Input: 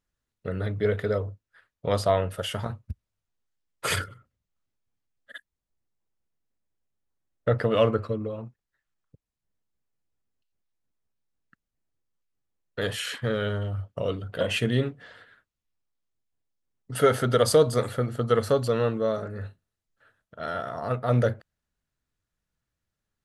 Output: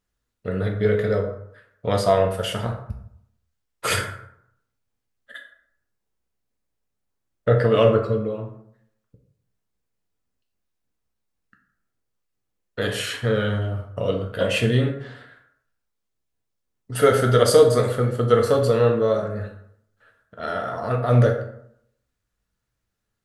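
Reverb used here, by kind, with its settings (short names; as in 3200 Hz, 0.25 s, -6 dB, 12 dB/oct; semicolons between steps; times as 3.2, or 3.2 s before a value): plate-style reverb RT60 0.7 s, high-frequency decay 0.55×, DRR 2 dB; gain +2.5 dB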